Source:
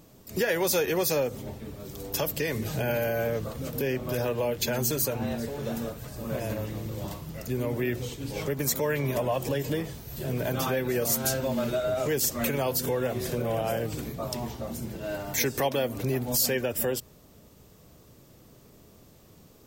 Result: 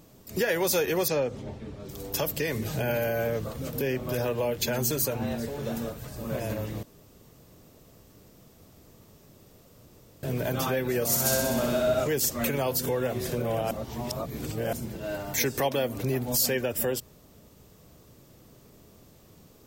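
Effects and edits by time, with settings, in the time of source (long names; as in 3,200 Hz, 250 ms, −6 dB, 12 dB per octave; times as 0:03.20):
0:01.08–0:01.89: high-frequency loss of the air 87 metres
0:06.83–0:10.23: fill with room tone
0:11.06–0:12.04: flutter between parallel walls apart 10.7 metres, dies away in 1.2 s
0:13.71–0:14.73: reverse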